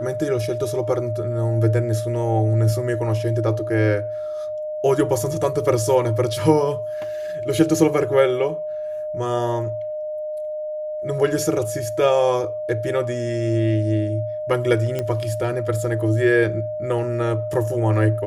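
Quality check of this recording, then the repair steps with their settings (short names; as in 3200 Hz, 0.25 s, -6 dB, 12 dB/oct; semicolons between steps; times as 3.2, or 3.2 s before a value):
tone 610 Hz -25 dBFS
14.99 pop -12 dBFS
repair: de-click; notch 610 Hz, Q 30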